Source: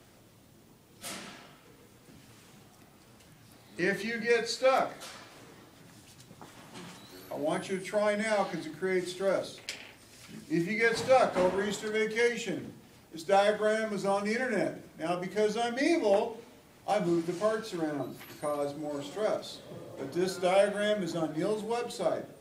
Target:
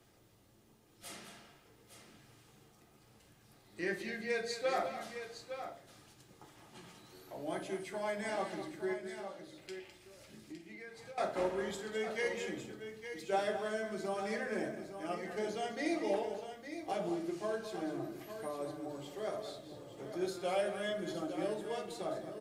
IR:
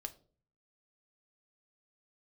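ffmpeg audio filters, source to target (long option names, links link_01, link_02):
-filter_complex "[0:a]asettb=1/sr,asplit=3[link_01][link_02][link_03];[link_01]atrim=end=8.934[link_04];[link_02]atrim=start=8.93:end=11.18,asetpts=PTS-STARTPTS,afade=type=in:duration=0.004:curve=qsin,afade=type=out:start_time=2.246:duration=0.004:curve=qsin,acompressor=threshold=-40dB:ratio=10[link_05];[link_03]atrim=start=11.176[link_06];[link_04][link_05]acrossfade=duration=0.004:curve1=hsin:curve2=qsin[link_07];[link_07][link_06]acrossfade=duration=0.004:curve1=qsin:curve2=hsin,aecho=1:1:208|861:0.299|0.335[link_08];[1:a]atrim=start_sample=2205[link_09];[link_08][link_09]afir=irnorm=-1:irlink=0,volume=-5dB"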